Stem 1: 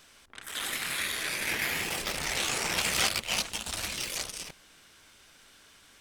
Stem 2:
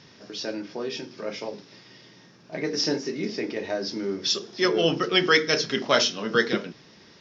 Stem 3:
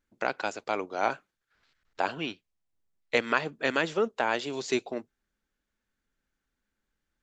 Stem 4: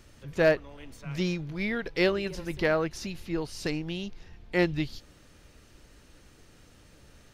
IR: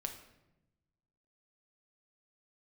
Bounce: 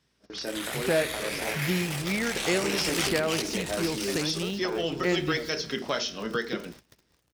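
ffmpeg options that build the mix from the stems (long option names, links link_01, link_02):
-filter_complex "[0:a]volume=-5dB,asplit=2[link_01][link_02];[link_02]volume=-6.5dB[link_03];[1:a]volume=-3.5dB,asplit=2[link_04][link_05];[link_05]volume=-17.5dB[link_06];[2:a]acompressor=threshold=-33dB:ratio=6,adelay=450,volume=-3dB[link_07];[3:a]highshelf=frequency=11000:gain=4.5,acrusher=bits=9:dc=4:mix=0:aa=0.000001,adelay=500,volume=1.5dB,asplit=2[link_08][link_09];[link_09]volume=-10dB[link_10];[link_04][link_08]amix=inputs=2:normalize=0,aeval=exprs='val(0)+0.00141*(sin(2*PI*60*n/s)+sin(2*PI*2*60*n/s)/2+sin(2*PI*3*60*n/s)/3+sin(2*PI*4*60*n/s)/4+sin(2*PI*5*60*n/s)/5)':channel_layout=same,acompressor=threshold=-27dB:ratio=6,volume=0dB[link_11];[4:a]atrim=start_sample=2205[link_12];[link_03][link_06][link_10]amix=inputs=3:normalize=0[link_13];[link_13][link_12]afir=irnorm=-1:irlink=0[link_14];[link_01][link_07][link_11][link_14]amix=inputs=4:normalize=0,agate=range=-19dB:threshold=-45dB:ratio=16:detection=peak,highpass=54"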